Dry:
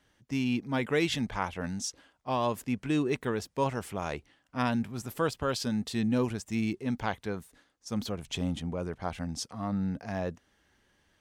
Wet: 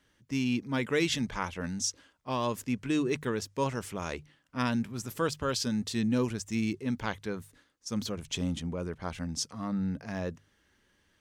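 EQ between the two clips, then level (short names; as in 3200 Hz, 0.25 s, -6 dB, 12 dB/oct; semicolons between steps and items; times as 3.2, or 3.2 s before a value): dynamic EQ 6200 Hz, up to +5 dB, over -55 dBFS, Q 1.5; bell 740 Hz -7 dB 0.47 oct; notches 50/100/150 Hz; 0.0 dB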